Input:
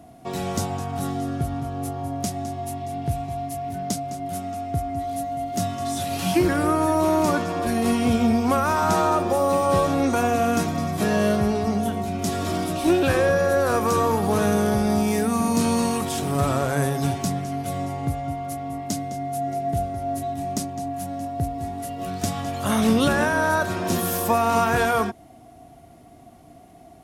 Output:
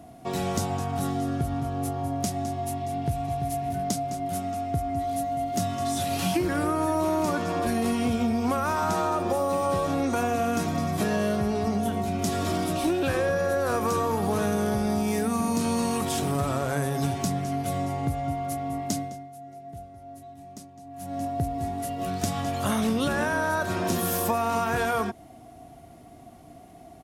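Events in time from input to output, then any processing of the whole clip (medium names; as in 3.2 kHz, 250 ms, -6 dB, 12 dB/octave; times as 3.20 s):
2.90–3.38 s: echo throw 340 ms, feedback 40%, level -8.5 dB
18.97–21.19 s: dip -16.5 dB, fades 0.39 s quadratic
whole clip: compression, threshold -22 dBFS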